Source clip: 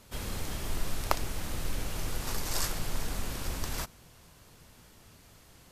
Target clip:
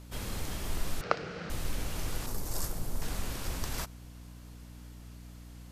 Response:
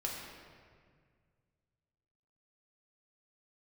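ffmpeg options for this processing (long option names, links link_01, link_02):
-filter_complex "[0:a]asettb=1/sr,asplit=3[link_01][link_02][link_03];[link_01]atrim=end=2.264[link_04];[link_02]atrim=start=2.26:end=3.02,asetpts=PTS-STARTPTS,afade=type=in:duration=0.004:curve=qsin,afade=type=out:start_time=0.756:duration=0.004:curve=qsin,equalizer=frequency=2600:width=0.48:gain=-11[link_05];[link_03]atrim=start=3.016[link_06];[link_04][link_05]acrossfade=duration=0.004:curve1=hsin:curve2=qsin[link_07];[link_07][link_06]acrossfade=duration=0.004:curve1=qsin:curve2=hsin,aeval=exprs='val(0)+0.00501*(sin(2*PI*60*n/s)+sin(2*PI*2*60*n/s)/2+sin(2*PI*3*60*n/s)/3+sin(2*PI*4*60*n/s)/4+sin(2*PI*5*60*n/s)/5)':channel_layout=same,asettb=1/sr,asplit=3[link_08][link_09][link_10];[link_08]atrim=end=1.014[link_11];[link_09]atrim=start=1.01:end=1.5,asetpts=PTS-STARTPTS,afade=type=in:duration=0.004:curve=qsin,afade=type=out:start_time=0.486:duration=0.004:curve=qsin,highpass=160,equalizer=frequency=170:width_type=q:width=4:gain=9,equalizer=frequency=260:width_type=q:width=4:gain=-7,equalizer=frequency=470:width_type=q:width=4:gain=10,equalizer=frequency=960:width_type=q:width=4:gain=-7,equalizer=frequency=1400:width_type=q:width=4:gain=8,equalizer=frequency=3500:width_type=q:width=4:gain=-6,lowpass=frequency=4600:width=0.5412,lowpass=frequency=4600:width=1.3066[link_12];[link_10]atrim=start=1.496[link_13];[link_11][link_12]acrossfade=duration=0.004:curve1=hsin:curve2=qsin[link_14];[link_14][link_13]acrossfade=duration=0.004:curve1=qsin:curve2=hsin,volume=-1dB"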